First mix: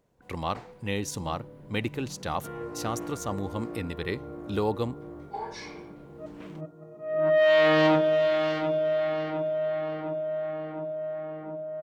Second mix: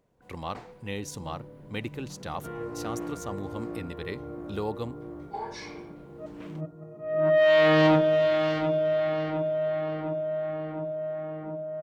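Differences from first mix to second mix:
speech -4.5 dB; second sound: remove high-pass 230 Hz 6 dB/octave

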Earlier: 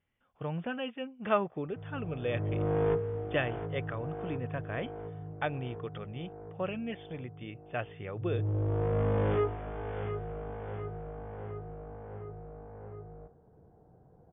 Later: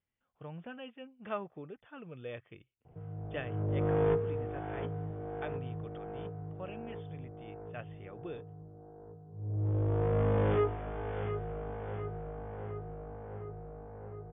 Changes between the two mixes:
speech -9.5 dB; background: entry +1.20 s

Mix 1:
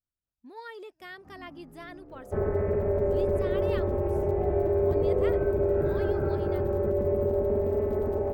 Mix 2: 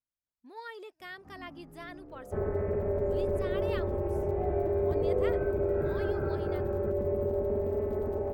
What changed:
speech: add bass shelf 220 Hz -11 dB; second sound -4.0 dB

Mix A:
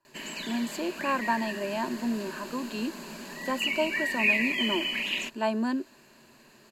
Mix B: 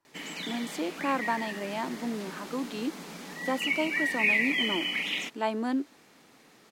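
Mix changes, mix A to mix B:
background: add bass shelf 66 Hz -10.5 dB; master: remove rippled EQ curve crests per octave 1.4, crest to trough 10 dB

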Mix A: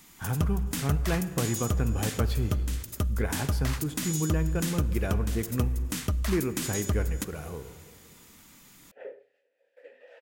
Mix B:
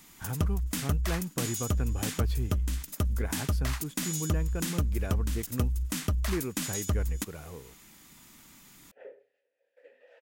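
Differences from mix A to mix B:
speech -4.0 dB; second sound -5.5 dB; reverb: off

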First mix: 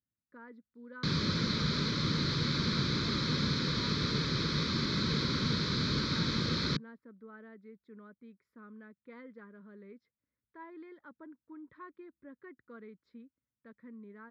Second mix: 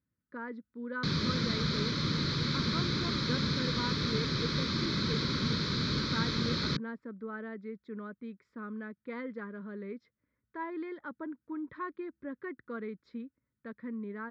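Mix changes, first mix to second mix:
speech +10.5 dB; master: add low-pass 7.7 kHz 24 dB/octave

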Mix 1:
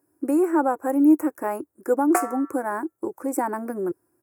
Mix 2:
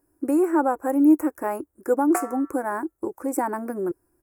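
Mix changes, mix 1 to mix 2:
background -4.0 dB; master: remove high-pass 100 Hz 24 dB/octave

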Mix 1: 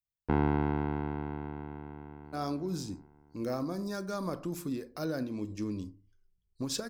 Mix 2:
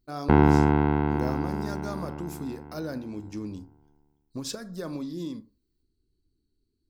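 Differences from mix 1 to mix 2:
speech: entry -2.25 s; background +9.5 dB

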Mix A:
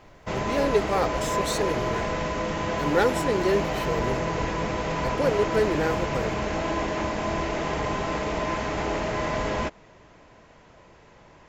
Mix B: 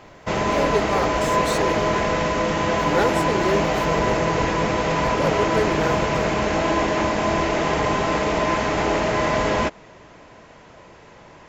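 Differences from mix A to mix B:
background +7.0 dB; master: add bass shelf 79 Hz -7 dB

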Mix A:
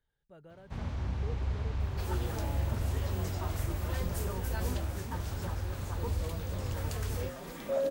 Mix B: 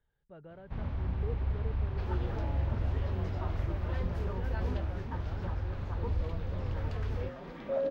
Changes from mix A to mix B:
speech +4.0 dB; first sound: remove high-pass 44 Hz; master: add distance through air 280 m

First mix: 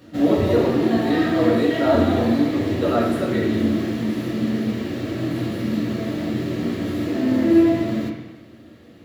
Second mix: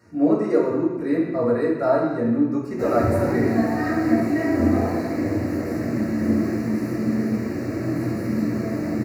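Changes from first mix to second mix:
background: entry +2.65 s; master: add Butterworth band-stop 3.3 kHz, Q 1.4

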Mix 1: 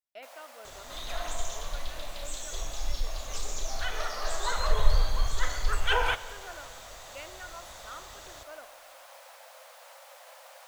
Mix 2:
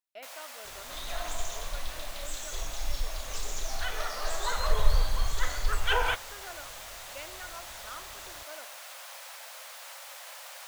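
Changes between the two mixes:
first sound: add tilt shelf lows -9.5 dB, about 710 Hz; second sound: send -10.5 dB

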